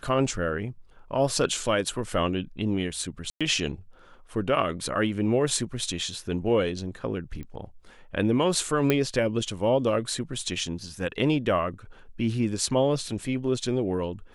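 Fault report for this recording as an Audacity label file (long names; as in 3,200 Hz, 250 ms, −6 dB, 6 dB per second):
3.300000	3.410000	drop-out 106 ms
7.430000	7.430000	click −27 dBFS
8.900000	8.900000	click −9 dBFS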